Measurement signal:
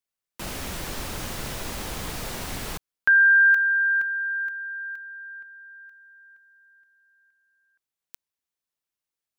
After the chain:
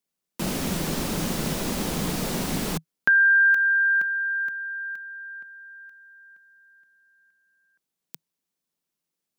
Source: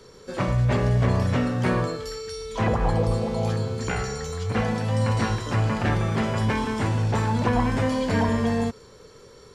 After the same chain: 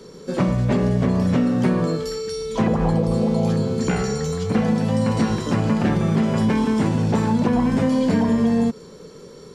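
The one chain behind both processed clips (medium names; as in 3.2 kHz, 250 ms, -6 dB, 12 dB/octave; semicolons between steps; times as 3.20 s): FFT filter 120 Hz 0 dB, 160 Hz +14 dB, 740 Hz +4 dB, 1.7 kHz +1 dB, 5.2 kHz +4 dB; compression, threshold -15 dBFS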